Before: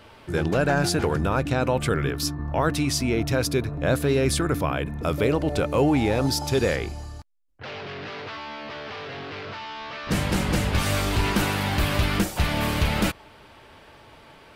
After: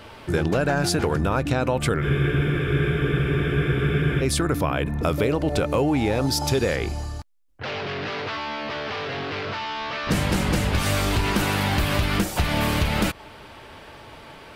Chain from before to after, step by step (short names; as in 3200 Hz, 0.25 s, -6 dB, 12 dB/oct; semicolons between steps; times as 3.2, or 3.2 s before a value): compressor 4:1, threshold -25 dBFS, peak gain reduction 8 dB; spectral freeze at 2.05, 2.17 s; gain +6 dB